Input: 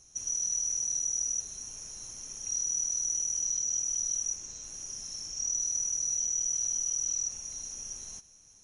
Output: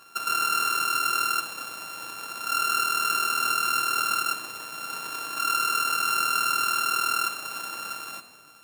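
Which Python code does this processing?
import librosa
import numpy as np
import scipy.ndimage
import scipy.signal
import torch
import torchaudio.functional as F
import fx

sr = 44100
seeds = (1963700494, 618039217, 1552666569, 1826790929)

y = np.r_[np.sort(x[:len(x) // 32 * 32].reshape(-1, 32), axis=1).ravel(), x[len(x) // 32 * 32:]]
y = scipy.signal.sosfilt(scipy.signal.butter(2, 200.0, 'highpass', fs=sr, output='sos'), y)
y = fx.room_shoebox(y, sr, seeds[0], volume_m3=1300.0, walls='mixed', distance_m=0.63)
y = F.gain(torch.from_numpy(y), 6.5).numpy()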